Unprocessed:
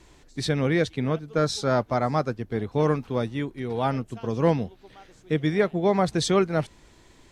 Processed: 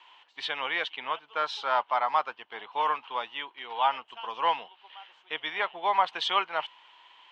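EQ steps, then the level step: resonant high-pass 940 Hz, resonance Q 4.9; resonant low-pass 3 kHz, resonance Q 8.8; -6.0 dB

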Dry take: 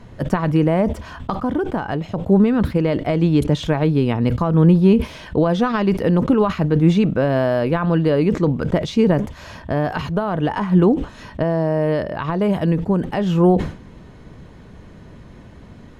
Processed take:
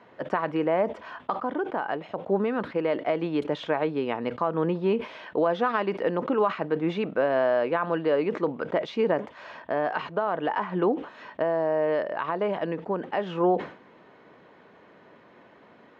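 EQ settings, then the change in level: band-pass 450–2600 Hz; -2.5 dB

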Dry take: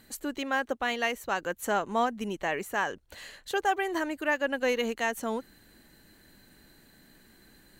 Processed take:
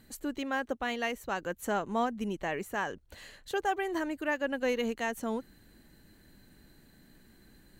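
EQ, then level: bass shelf 320 Hz +8 dB; -5.0 dB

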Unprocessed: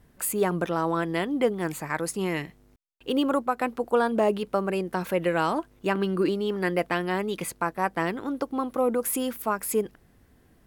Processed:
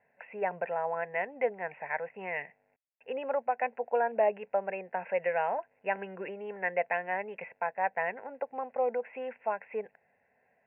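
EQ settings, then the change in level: high-pass 380 Hz 12 dB/octave; rippled Chebyshev low-pass 2.7 kHz, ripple 3 dB; static phaser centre 1.2 kHz, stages 6; 0.0 dB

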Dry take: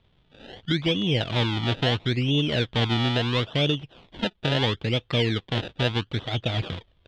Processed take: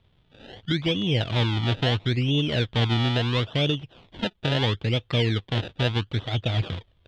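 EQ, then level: peaking EQ 100 Hz +5 dB 0.67 oct; -1.0 dB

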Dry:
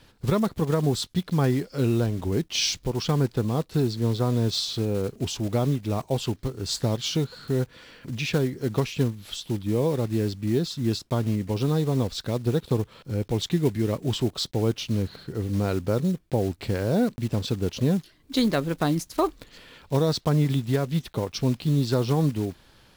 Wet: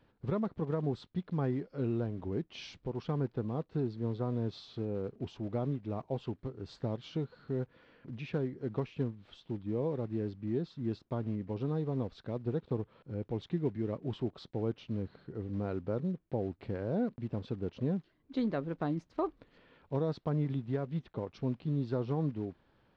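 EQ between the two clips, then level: tape spacing loss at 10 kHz 40 dB; bass shelf 100 Hz -9.5 dB; -7.0 dB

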